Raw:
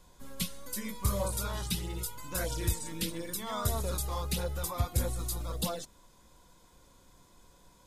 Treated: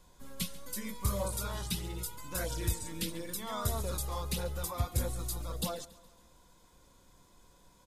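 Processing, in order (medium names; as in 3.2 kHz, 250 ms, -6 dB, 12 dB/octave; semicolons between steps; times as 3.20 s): feedback delay 139 ms, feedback 53%, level -20 dB; trim -2 dB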